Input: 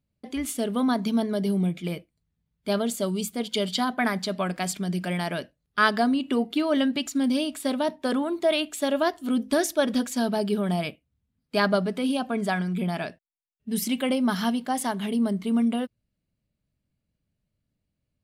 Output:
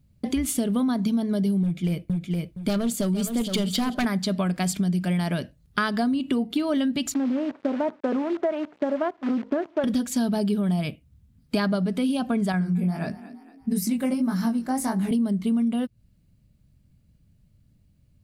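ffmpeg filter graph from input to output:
-filter_complex "[0:a]asettb=1/sr,asplit=3[a][b][c];[a]atrim=end=1.634[d];[b]atrim=start=1.63:end=4.05,asetpts=PTS-STARTPTS,afade=t=in:d=0.004:c=qsin,afade=t=out:st=2.416:d=0.004:c=qsin,volume=23dB,asoftclip=hard,volume=-23dB,aecho=1:1:466|932:0.316|0.0506,atrim=end_sample=106722[e];[c]atrim=start=4.046[f];[d][e]acrossfade=d=0.004:c1=hsin:c2=qsin[g];[g][f]acrossfade=d=0.004:c1=qsin:c2=hsin,asettb=1/sr,asplit=3[h][i][j];[h]atrim=end=7.144[k];[i]atrim=start=7.14:end=9.84,asetpts=PTS-STARTPTS,afade=t=in:d=0.004:c=qsin,afade=t=out:st=2.696:d=0.004:c=qsin,adynamicsmooth=sensitivity=0.5:basefreq=790,acrusher=bits=7:dc=4:mix=0:aa=0.000001,highpass=360,lowpass=2.2k[l];[j]atrim=start=9.836[m];[k][l]acrossfade=d=0.004:c1=hsin:c2=qsin[n];[n][m]acrossfade=d=0.004:c1=qsin:c2=hsin,asettb=1/sr,asplit=3[o][p][q];[o]atrim=end=12.524[r];[p]atrim=start=12.52:end=15.11,asetpts=PTS-STARTPTS,afade=t=in:d=0.004:c=qsin,afade=t=out:st=2.586:d=0.004:c=qsin,equalizer=f=3.2k:w=3.4:g=-14.5,flanger=delay=16:depth=7:speed=1.6,asplit=4[s][t][u][v];[t]adelay=231,afreqshift=31,volume=-23.5dB[w];[u]adelay=462,afreqshift=62,volume=-30.2dB[x];[v]adelay=693,afreqshift=93,volume=-37dB[y];[s][w][x][y]amix=inputs=4:normalize=0,atrim=end_sample=114219[z];[q]atrim=start=15.106[aa];[r][z]acrossfade=d=0.004:c1=hsin:c2=qsin[ab];[ab][aa]acrossfade=d=0.004:c1=qsin:c2=hsin,bass=f=250:g=12,treble=f=4k:g=3,acompressor=threshold=-31dB:ratio=6,volume=8.5dB"

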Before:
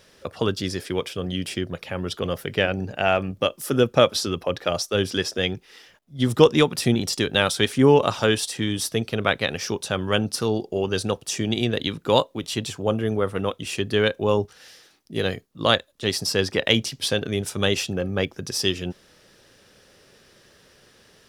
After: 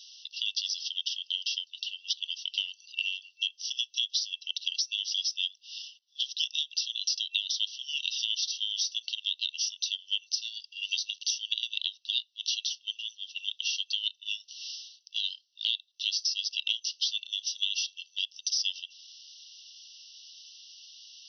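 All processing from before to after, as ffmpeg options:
-filter_complex "[0:a]asettb=1/sr,asplit=3[a][b][c];[a]atrim=end=10.834[d];[b]atrim=start=10.83:end=11.32,asetpts=PTS-STARTPTS,afade=t=in:d=0.004:c=qsin,afade=t=out:st=0.486:d=0.004:c=qsin,acrusher=bits=9:dc=4:mix=0:aa=0.000001,acompressor=mode=upward:threshold=-25dB:ratio=2.5:attack=3.2:release=140:knee=2.83:detection=peak[e];[c]atrim=start=11.316[f];[d][e]acrossfade=d=0.004:c1=hsin:c2=qsin[g];[g][f]acrossfade=d=0.004:c1=qsin:c2=hsin,afftfilt=real='re*between(b*sr/4096,2700,6100)':imag='im*between(b*sr/4096,2700,6100)':win_size=4096:overlap=0.75,highshelf=f=4k:g=7,acompressor=threshold=-34dB:ratio=5,volume=6dB"

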